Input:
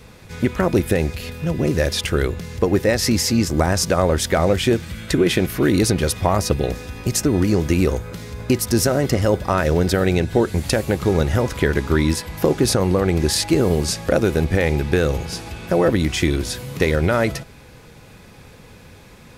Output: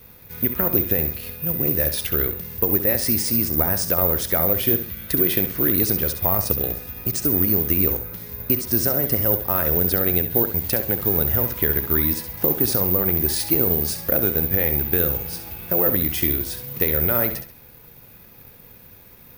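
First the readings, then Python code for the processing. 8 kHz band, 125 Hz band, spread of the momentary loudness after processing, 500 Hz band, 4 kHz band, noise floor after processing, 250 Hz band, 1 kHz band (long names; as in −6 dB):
−5.0 dB, −7.0 dB, 6 LU, −7.0 dB, −7.0 dB, −47 dBFS, −7.0 dB, −7.0 dB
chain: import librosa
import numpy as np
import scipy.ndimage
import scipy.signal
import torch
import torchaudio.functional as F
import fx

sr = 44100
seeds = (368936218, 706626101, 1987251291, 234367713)

y = fx.room_flutter(x, sr, wall_m=11.5, rt60_s=0.39)
y = (np.kron(scipy.signal.resample_poly(y, 1, 3), np.eye(3)[0]) * 3)[:len(y)]
y = y * librosa.db_to_amplitude(-7.5)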